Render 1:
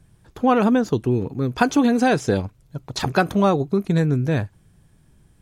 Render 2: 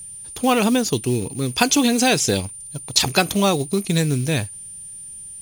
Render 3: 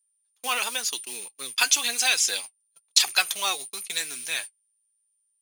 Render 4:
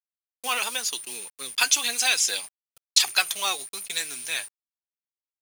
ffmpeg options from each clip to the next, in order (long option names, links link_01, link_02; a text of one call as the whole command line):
ffmpeg -i in.wav -filter_complex "[0:a]asplit=2[link_01][link_02];[link_02]acrusher=bits=5:mode=log:mix=0:aa=0.000001,volume=-11.5dB[link_03];[link_01][link_03]amix=inputs=2:normalize=0,aexciter=amount=3.8:drive=7:freq=2200,aeval=exprs='val(0)+0.0282*sin(2*PI*9200*n/s)':channel_layout=same,volume=-3dB" out.wav
ffmpeg -i in.wav -af "agate=range=-35dB:threshold=-25dB:ratio=16:detection=peak,highpass=1400,flanger=delay=2.5:depth=6.2:regen=50:speed=0.98:shape=triangular,volume=3dB" out.wav
ffmpeg -i in.wav -af "acrusher=bits=7:mix=0:aa=0.000001" out.wav